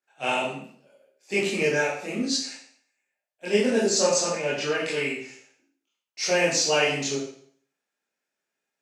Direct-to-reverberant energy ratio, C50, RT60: −9.0 dB, 3.0 dB, 0.55 s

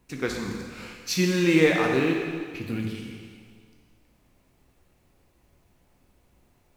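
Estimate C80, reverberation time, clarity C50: 4.0 dB, 1.9 s, 2.5 dB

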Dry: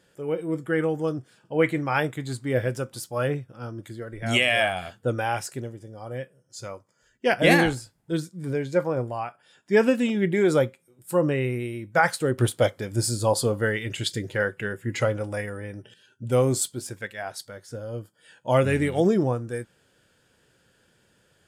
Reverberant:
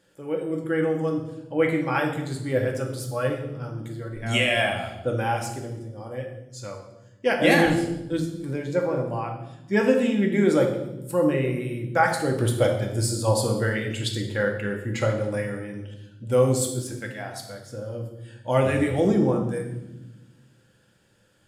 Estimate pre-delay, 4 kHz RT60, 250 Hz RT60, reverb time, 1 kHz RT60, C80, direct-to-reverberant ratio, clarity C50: 4 ms, 0.85 s, 1.9 s, 1.0 s, 0.85 s, 9.0 dB, 2.0 dB, 6.5 dB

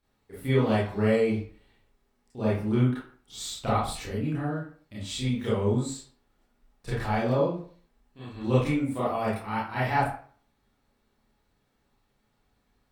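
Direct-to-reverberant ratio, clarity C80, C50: −9.5 dB, 7.5 dB, 0.5 dB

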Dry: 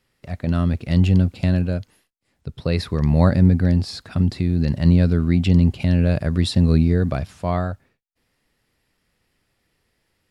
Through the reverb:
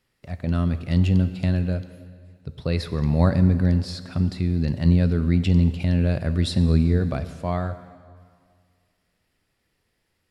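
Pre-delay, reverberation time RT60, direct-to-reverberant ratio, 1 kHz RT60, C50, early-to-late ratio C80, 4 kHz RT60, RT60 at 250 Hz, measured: 6 ms, 2.0 s, 11.5 dB, 2.1 s, 12.5 dB, 13.5 dB, 1.9 s, 1.9 s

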